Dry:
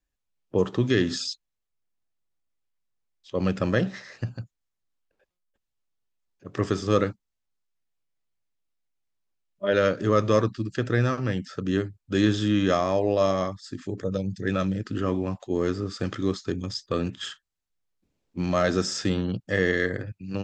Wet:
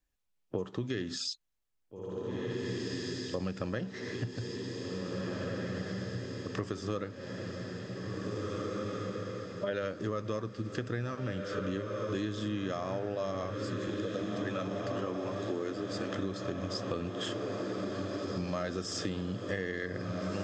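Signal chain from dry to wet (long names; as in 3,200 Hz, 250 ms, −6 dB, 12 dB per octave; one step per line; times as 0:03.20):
0:13.89–0:16.15: high-pass filter 230 Hz 24 dB per octave
feedback delay with all-pass diffusion 1,864 ms, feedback 64%, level −7.5 dB
downward compressor 6 to 1, threshold −32 dBFS, peak gain reduction 16 dB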